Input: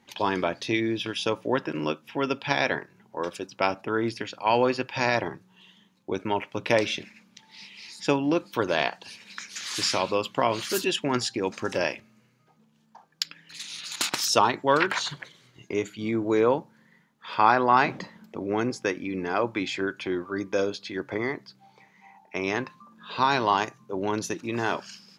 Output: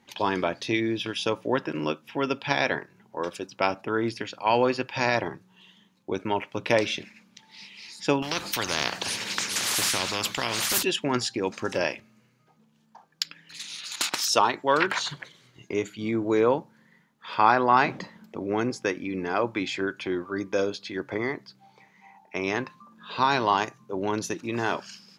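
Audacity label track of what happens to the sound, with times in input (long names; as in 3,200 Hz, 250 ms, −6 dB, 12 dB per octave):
8.220000	10.830000	every bin compressed towards the loudest bin 4 to 1
13.750000	14.780000	low-shelf EQ 200 Hz −9 dB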